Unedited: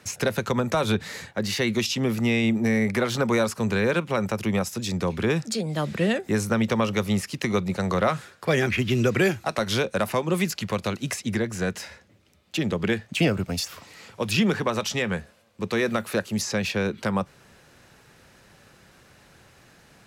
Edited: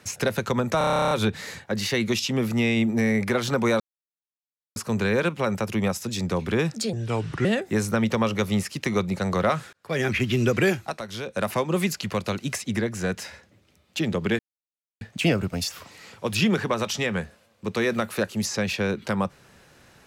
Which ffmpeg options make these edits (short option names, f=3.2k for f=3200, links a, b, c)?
-filter_complex "[0:a]asplit=19[a][b][c][d][e][f][g][h][i][j][k][l][m][n][o][p][q][r][s];[a]atrim=end=0.812[t];[b]atrim=start=0.778:end=0.812[u];[c]atrim=start=0.778:end=0.812[v];[d]atrim=start=0.778:end=0.812[w];[e]atrim=start=0.778:end=0.812[x];[f]atrim=start=0.778:end=0.812[y];[g]atrim=start=0.778:end=0.812[z];[h]atrim=start=0.778:end=0.812[aa];[i]atrim=start=0.778:end=0.812[ab];[j]atrim=start=0.778:end=0.812[ac];[k]atrim=start=0.778:end=0.812[ad];[l]atrim=start=0.778:end=3.47,asetpts=PTS-STARTPTS,afade=t=out:st=2.688:d=0.004:c=hsin,apad=pad_dur=0.96[ae];[m]atrim=start=3.47:end=5.644,asetpts=PTS-STARTPTS,afade=t=in:d=0.004:c=hsin[af];[n]atrim=start=5.64:end=6.03,asetpts=PTS-STARTPTS,asetrate=33075,aresample=44100[ag];[o]atrim=start=6.026:end=8.31,asetpts=PTS-STARTPTS,afade=t=out:st=2.28:d=0.004:c=hsin[ah];[p]atrim=start=8.31:end=9.59,asetpts=PTS-STARTPTS,afade=t=in:d=0.37,afade=t=out:st=0.95:d=0.33:c=qsin:silence=0.334965[ai];[q]atrim=start=9.59:end=9.81,asetpts=PTS-STARTPTS,volume=-9.5dB[aj];[r]atrim=start=9.81:end=12.97,asetpts=PTS-STARTPTS,afade=t=in:d=0.33:c=qsin:silence=0.334965,afade=t=out:st=3.156:d=0.004:c=hsin,apad=pad_dur=0.62[ak];[s]atrim=start=12.97,asetpts=PTS-STARTPTS,afade=t=in:d=0.004:c=hsin[al];[t][u]acrossfade=d=0.004:c1=hsin:c2=hsin[am];[am][v]acrossfade=d=0.004:c1=hsin:c2=hsin[an];[an][w]acrossfade=d=0.004:c1=hsin:c2=hsin[ao];[ao][x]acrossfade=d=0.004:c1=hsin:c2=hsin[ap];[ap][y]acrossfade=d=0.004:c1=hsin:c2=hsin[aq];[aq][z]acrossfade=d=0.004:c1=hsin:c2=hsin[ar];[ar][aa]acrossfade=d=0.004:c1=hsin:c2=hsin[as];[as][ab]acrossfade=d=0.004:c1=hsin:c2=hsin[at];[at][ac]acrossfade=d=0.004:c1=hsin:c2=hsin[au];[au][ad]acrossfade=d=0.004:c1=hsin:c2=hsin[av];[ae][af]concat=n=2:v=0:a=1[aw];[av][aw]acrossfade=d=0.004:c1=hsin:c2=hsin[ax];[ax][ag]acrossfade=d=0.004:c1=hsin:c2=hsin[ay];[ah][ai][aj][ak][al]concat=n=5:v=0:a=1[az];[ay][az]acrossfade=d=0.004:c1=hsin:c2=hsin"